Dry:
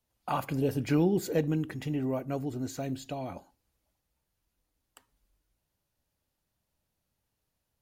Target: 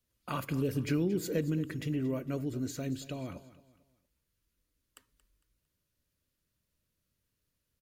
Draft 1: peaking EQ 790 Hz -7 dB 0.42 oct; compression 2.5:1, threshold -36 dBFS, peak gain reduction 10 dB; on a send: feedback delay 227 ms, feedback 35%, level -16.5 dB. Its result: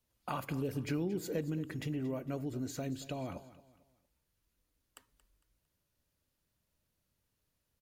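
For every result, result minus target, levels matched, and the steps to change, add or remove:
compression: peak gain reduction +5.5 dB; 1 kHz band +4.0 dB
change: compression 2.5:1, threshold -27.5 dBFS, peak gain reduction 5 dB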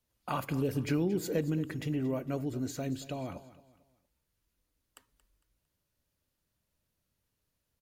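1 kHz band +3.0 dB
change: peaking EQ 790 Hz -18 dB 0.42 oct

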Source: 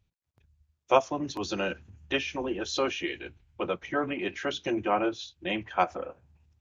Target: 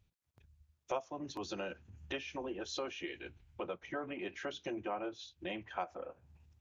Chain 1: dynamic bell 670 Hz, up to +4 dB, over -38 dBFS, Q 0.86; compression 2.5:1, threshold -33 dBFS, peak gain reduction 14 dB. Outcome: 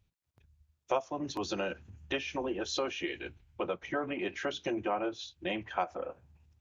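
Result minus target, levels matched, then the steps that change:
compression: peak gain reduction -6.5 dB
change: compression 2.5:1, threshold -44 dBFS, peak gain reduction 20.5 dB

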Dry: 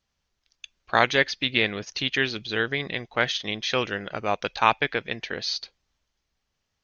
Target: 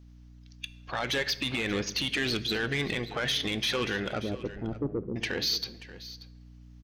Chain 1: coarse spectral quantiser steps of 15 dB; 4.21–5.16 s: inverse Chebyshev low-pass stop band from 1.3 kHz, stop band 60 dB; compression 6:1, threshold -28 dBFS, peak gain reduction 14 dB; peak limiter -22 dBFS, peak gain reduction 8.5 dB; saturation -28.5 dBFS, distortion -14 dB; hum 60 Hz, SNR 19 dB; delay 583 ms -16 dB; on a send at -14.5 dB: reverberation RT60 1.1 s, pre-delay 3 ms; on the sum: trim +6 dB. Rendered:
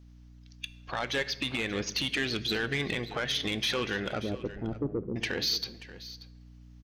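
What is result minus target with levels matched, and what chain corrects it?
compression: peak gain reduction +14 dB
coarse spectral quantiser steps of 15 dB; 4.21–5.16 s: inverse Chebyshev low-pass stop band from 1.3 kHz, stop band 60 dB; peak limiter -22 dBFS, peak gain reduction 17 dB; saturation -28.5 dBFS, distortion -14 dB; hum 60 Hz, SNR 19 dB; delay 583 ms -16 dB; on a send at -14.5 dB: reverberation RT60 1.1 s, pre-delay 3 ms; on the sum: trim +6 dB

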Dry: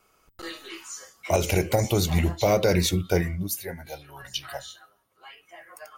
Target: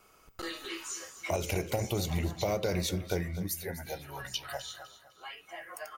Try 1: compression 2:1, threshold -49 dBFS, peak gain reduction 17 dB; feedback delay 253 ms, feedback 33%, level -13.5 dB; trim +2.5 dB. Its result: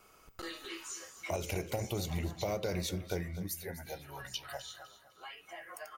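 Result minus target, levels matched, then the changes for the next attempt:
compression: peak gain reduction +4 dB
change: compression 2:1, threshold -40.5 dBFS, peak gain reduction 13 dB

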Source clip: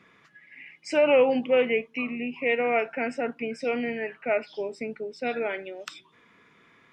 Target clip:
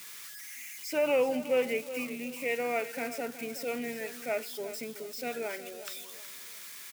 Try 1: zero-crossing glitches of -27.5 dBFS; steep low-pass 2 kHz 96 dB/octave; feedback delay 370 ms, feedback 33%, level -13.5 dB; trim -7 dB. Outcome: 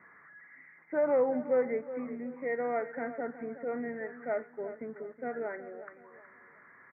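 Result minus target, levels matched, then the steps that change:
2 kHz band -5.5 dB
remove: steep low-pass 2 kHz 96 dB/octave

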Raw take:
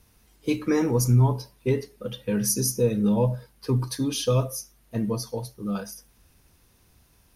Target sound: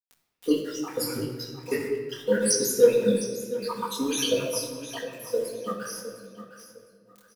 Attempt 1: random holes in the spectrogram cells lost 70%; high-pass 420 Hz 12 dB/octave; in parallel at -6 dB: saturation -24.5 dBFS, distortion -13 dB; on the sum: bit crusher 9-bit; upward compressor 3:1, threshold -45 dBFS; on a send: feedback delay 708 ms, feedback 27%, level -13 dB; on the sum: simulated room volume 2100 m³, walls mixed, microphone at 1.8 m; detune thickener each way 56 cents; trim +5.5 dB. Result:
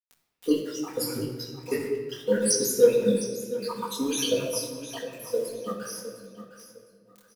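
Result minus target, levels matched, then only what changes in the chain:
2 kHz band -2.5 dB
add after high-pass: dynamic bell 1.6 kHz, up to +4 dB, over -53 dBFS, Q 0.84

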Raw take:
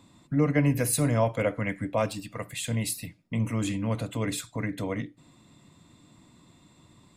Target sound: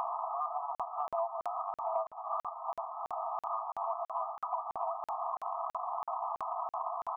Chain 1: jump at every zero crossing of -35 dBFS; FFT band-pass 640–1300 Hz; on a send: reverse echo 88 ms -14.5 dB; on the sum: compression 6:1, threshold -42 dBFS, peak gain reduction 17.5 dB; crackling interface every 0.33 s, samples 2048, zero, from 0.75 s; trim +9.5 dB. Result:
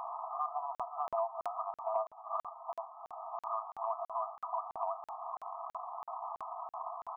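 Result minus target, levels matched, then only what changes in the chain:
jump at every zero crossing: distortion -8 dB
change: jump at every zero crossing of -24.5 dBFS

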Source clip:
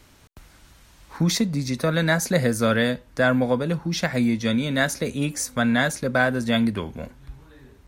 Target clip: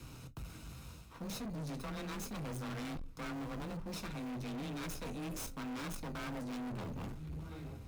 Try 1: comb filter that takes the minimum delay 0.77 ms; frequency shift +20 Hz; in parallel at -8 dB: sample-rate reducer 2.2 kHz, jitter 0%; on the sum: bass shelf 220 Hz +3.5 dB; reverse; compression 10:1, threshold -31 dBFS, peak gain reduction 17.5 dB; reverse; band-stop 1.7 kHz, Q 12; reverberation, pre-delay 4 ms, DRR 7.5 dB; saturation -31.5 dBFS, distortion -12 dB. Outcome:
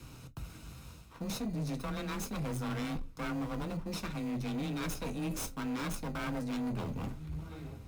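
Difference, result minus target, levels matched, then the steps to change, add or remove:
saturation: distortion -6 dB
change: saturation -39.5 dBFS, distortion -6 dB

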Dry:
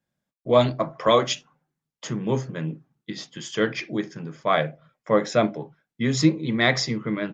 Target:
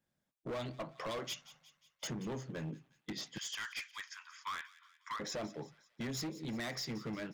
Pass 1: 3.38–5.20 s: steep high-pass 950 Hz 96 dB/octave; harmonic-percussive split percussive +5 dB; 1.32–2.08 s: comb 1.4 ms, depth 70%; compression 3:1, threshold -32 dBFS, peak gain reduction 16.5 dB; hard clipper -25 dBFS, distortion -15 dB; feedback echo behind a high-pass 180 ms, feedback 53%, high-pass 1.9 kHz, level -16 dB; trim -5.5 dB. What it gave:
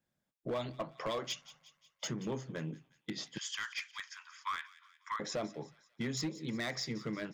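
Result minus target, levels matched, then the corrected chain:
hard clipper: distortion -7 dB
3.38–5.20 s: steep high-pass 950 Hz 96 dB/octave; harmonic-percussive split percussive +5 dB; 1.32–2.08 s: comb 1.4 ms, depth 70%; compression 3:1, threshold -32 dBFS, peak gain reduction 16.5 dB; hard clipper -31 dBFS, distortion -8 dB; feedback echo behind a high-pass 180 ms, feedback 53%, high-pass 1.9 kHz, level -16 dB; trim -5.5 dB

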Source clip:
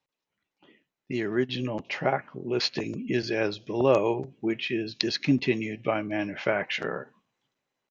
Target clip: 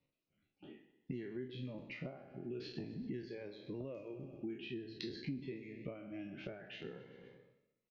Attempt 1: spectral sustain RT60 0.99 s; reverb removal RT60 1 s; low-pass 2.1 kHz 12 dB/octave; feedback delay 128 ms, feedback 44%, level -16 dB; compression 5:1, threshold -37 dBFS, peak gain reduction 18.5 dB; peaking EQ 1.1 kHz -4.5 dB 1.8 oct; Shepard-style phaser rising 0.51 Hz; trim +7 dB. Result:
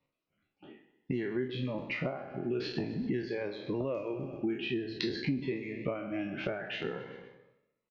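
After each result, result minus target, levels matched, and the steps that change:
compression: peak gain reduction -8.5 dB; 1 kHz band +5.0 dB
change: compression 5:1, threshold -47.5 dBFS, peak gain reduction 27 dB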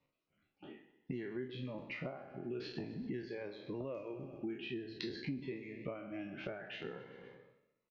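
1 kHz band +5.5 dB
change: peaking EQ 1.1 kHz -14 dB 1.8 oct

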